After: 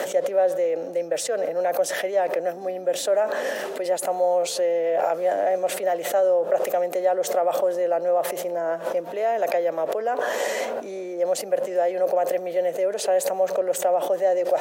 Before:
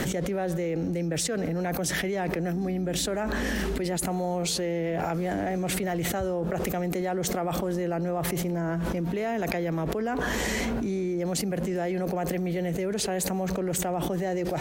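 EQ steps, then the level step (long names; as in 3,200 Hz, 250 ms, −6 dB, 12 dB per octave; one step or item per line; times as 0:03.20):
high-pass with resonance 570 Hz, resonance Q 4.9
parametric band 4,400 Hz −2 dB
notch filter 2,200 Hz, Q 18
0.0 dB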